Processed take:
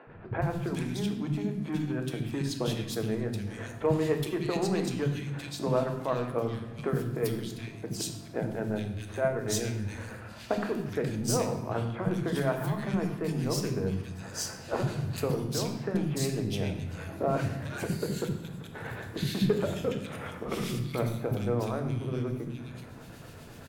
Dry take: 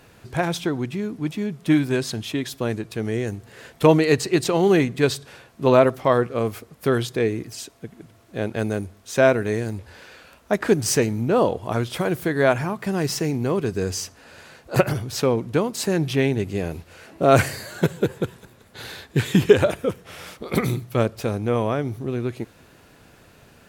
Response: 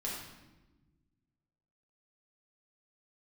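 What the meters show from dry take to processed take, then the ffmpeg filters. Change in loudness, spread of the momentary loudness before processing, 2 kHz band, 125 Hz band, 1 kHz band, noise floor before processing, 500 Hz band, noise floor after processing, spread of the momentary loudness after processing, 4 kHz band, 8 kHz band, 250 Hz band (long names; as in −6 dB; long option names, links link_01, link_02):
−9.5 dB, 14 LU, −11.5 dB, −5.5 dB, −10.5 dB, −53 dBFS, −10.5 dB, −46 dBFS, 9 LU, −7.5 dB, −7.0 dB, −8.0 dB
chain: -filter_complex "[0:a]equalizer=frequency=140:width=0.75:gain=4.5,acompressor=threshold=-34dB:ratio=4,aeval=exprs='0.112*(cos(1*acos(clip(val(0)/0.112,-1,1)))-cos(1*PI/2))+0.00501*(cos(7*acos(clip(val(0)/0.112,-1,1)))-cos(7*PI/2))':channel_layout=same,tremolo=f=8:d=0.51,acrossover=split=260|2100[link_01][link_02][link_03];[link_01]adelay=70[link_04];[link_03]adelay=420[link_05];[link_04][link_02][link_05]amix=inputs=3:normalize=0,asplit=2[link_06][link_07];[1:a]atrim=start_sample=2205[link_08];[link_07][link_08]afir=irnorm=-1:irlink=0,volume=-3dB[link_09];[link_06][link_09]amix=inputs=2:normalize=0,volume=4dB"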